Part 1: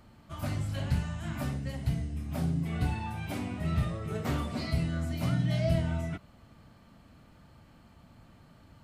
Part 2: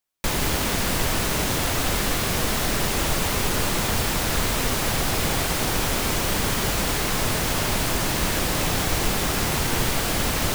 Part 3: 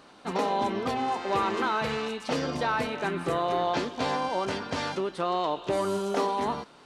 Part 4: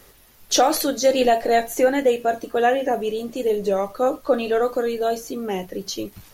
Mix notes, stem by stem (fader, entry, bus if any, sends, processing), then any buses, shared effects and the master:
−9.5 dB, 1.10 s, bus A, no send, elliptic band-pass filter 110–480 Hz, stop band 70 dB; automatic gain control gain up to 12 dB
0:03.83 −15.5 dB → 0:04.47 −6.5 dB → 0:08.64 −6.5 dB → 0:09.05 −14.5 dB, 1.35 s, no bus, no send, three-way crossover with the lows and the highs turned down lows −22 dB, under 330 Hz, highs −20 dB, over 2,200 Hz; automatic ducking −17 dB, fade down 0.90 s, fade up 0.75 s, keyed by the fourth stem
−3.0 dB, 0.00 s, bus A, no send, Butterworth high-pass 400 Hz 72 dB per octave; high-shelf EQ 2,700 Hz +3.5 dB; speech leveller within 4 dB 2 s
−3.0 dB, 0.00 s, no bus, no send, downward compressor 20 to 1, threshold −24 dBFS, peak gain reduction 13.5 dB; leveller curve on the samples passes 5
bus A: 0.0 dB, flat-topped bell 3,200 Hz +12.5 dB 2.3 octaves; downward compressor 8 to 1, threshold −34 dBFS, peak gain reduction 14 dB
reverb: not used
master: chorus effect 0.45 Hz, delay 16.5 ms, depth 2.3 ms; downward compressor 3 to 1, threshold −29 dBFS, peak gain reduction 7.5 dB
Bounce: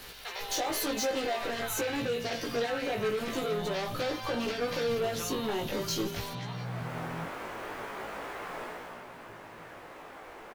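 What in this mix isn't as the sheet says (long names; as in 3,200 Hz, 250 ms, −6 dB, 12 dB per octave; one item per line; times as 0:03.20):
stem 4 −3.0 dB → −11.5 dB
master: missing downward compressor 3 to 1, threshold −29 dBFS, peak gain reduction 7.5 dB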